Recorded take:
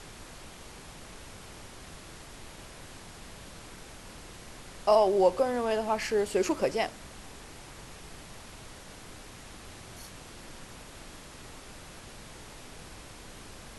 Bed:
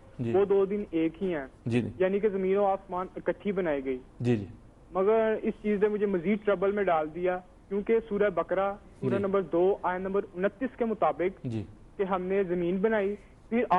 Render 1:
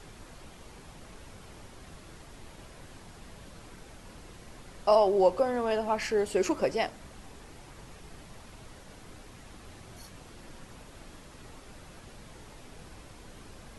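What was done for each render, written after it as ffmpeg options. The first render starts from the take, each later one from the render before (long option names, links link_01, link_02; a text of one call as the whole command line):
ffmpeg -i in.wav -af "afftdn=noise_reduction=6:noise_floor=-48" out.wav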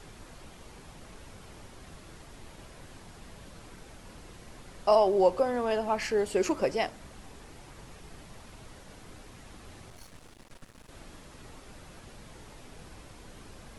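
ffmpeg -i in.wav -filter_complex "[0:a]asettb=1/sr,asplit=3[link_01][link_02][link_03];[link_01]atrim=end=9.904[link_04];[link_02]atrim=start=9.9:end=10.89,asetpts=PTS-STARTPTS,afade=type=in:duration=0.004:curve=qsin,afade=type=out:start_time=0.986:duration=0.004:curve=qsin,aeval=exprs='max(val(0),0)':channel_layout=same[link_05];[link_03]atrim=start=10.886[link_06];[link_04][link_05]acrossfade=duration=0.004:curve1=hsin:curve2=qsin[link_07];[link_07][link_06]acrossfade=duration=0.004:curve1=qsin:curve2=hsin" out.wav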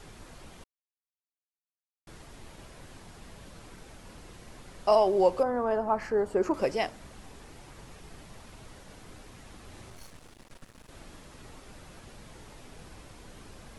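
ffmpeg -i in.wav -filter_complex "[0:a]asettb=1/sr,asplit=3[link_01][link_02][link_03];[link_01]atrim=end=5.434[link_04];[link_02]atrim=start=5.43:end=6.54,asetpts=PTS-STARTPTS,afade=type=in:duration=0.004:curve=qsin,afade=type=out:start_time=1.106:duration=0.004:curve=qsin,highshelf=frequency=1900:width_type=q:width=1.5:gain=-12[link_05];[link_03]atrim=start=6.536[link_06];[link_04][link_05]acrossfade=duration=0.004:curve1=hsin:curve2=qsin[link_07];[link_07][link_06]acrossfade=duration=0.004:curve1=qsin:curve2=hsin,asettb=1/sr,asplit=3[link_08][link_09][link_10];[link_08]atrim=end=9.704[link_11];[link_09]atrim=start=9.7:end=10.12,asetpts=PTS-STARTPTS,afade=type=in:duration=0.004:curve=qsin,afade=type=out:start_time=0.416:duration=0.004:curve=qsin,asplit=2[link_12][link_13];[link_13]adelay=34,volume=-6dB[link_14];[link_12][link_14]amix=inputs=2:normalize=0,atrim=end_sample=18522[link_15];[link_10]atrim=start=10.116[link_16];[link_11][link_15]acrossfade=duration=0.004:curve1=hsin:curve2=qsin[link_17];[link_17][link_16]acrossfade=duration=0.004:curve1=qsin:curve2=hsin,asplit=3[link_18][link_19][link_20];[link_18]atrim=end=0.64,asetpts=PTS-STARTPTS,afade=type=out:start_time=0.636:duration=0.004:curve=hsin[link_21];[link_19]atrim=start=0.64:end=2.07,asetpts=PTS-STARTPTS,volume=0[link_22];[link_20]atrim=start=2.07,asetpts=PTS-STARTPTS,afade=type=in:duration=0.004:curve=hsin[link_23];[link_21][link_22][link_23]concat=n=3:v=0:a=1" out.wav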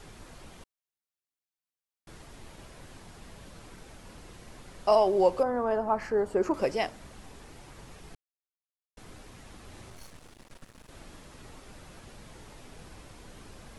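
ffmpeg -i in.wav -filter_complex "[0:a]asplit=3[link_01][link_02][link_03];[link_01]atrim=end=8.15,asetpts=PTS-STARTPTS,afade=type=out:start_time=8.146:duration=0.004:curve=hsin[link_04];[link_02]atrim=start=8.15:end=8.97,asetpts=PTS-STARTPTS,volume=0[link_05];[link_03]atrim=start=8.97,asetpts=PTS-STARTPTS,afade=type=in:duration=0.004:curve=hsin[link_06];[link_04][link_05][link_06]concat=n=3:v=0:a=1" out.wav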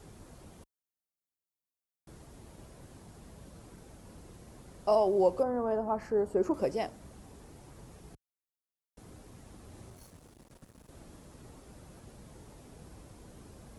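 ffmpeg -i in.wav -af "highpass=42,equalizer=frequency=2500:width=0.4:gain=-10.5" out.wav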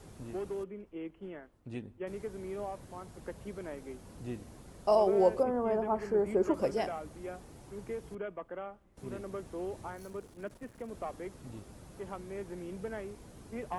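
ffmpeg -i in.wav -i bed.wav -filter_complex "[1:a]volume=-14dB[link_01];[0:a][link_01]amix=inputs=2:normalize=0" out.wav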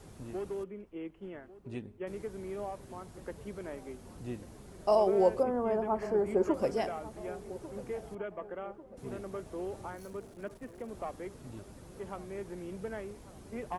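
ffmpeg -i in.wav -filter_complex "[0:a]asplit=2[link_01][link_02];[link_02]adelay=1145,lowpass=frequency=1700:poles=1,volume=-16.5dB,asplit=2[link_03][link_04];[link_04]adelay=1145,lowpass=frequency=1700:poles=1,volume=0.52,asplit=2[link_05][link_06];[link_06]adelay=1145,lowpass=frequency=1700:poles=1,volume=0.52,asplit=2[link_07][link_08];[link_08]adelay=1145,lowpass=frequency=1700:poles=1,volume=0.52,asplit=2[link_09][link_10];[link_10]adelay=1145,lowpass=frequency=1700:poles=1,volume=0.52[link_11];[link_01][link_03][link_05][link_07][link_09][link_11]amix=inputs=6:normalize=0" out.wav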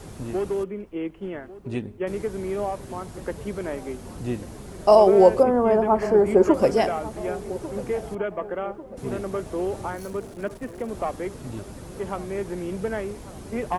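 ffmpeg -i in.wav -af "volume=11.5dB,alimiter=limit=-3dB:level=0:latency=1" out.wav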